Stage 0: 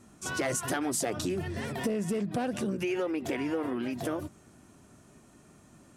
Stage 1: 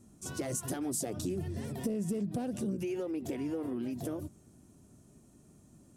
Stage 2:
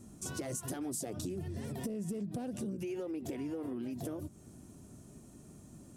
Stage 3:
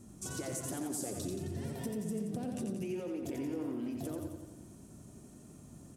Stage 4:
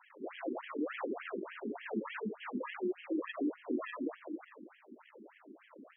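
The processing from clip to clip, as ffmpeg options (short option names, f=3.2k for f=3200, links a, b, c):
-af "equalizer=f=1.7k:w=0.39:g=-14.5"
-af "acompressor=threshold=-46dB:ratio=2.5,volume=5.5dB"
-af "aecho=1:1:88|176|264|352|440|528|616|704:0.562|0.337|0.202|0.121|0.0729|0.0437|0.0262|0.0157,volume=-1dB"
-af "acrusher=samples=34:mix=1:aa=0.000001:lfo=1:lforange=54.4:lforate=1.6,afftfilt=real='re*between(b*sr/1024,290*pow(2400/290,0.5+0.5*sin(2*PI*3.4*pts/sr))/1.41,290*pow(2400/290,0.5+0.5*sin(2*PI*3.4*pts/sr))*1.41)':imag='im*between(b*sr/1024,290*pow(2400/290,0.5+0.5*sin(2*PI*3.4*pts/sr))/1.41,290*pow(2400/290,0.5+0.5*sin(2*PI*3.4*pts/sr))*1.41)':win_size=1024:overlap=0.75,volume=7dB"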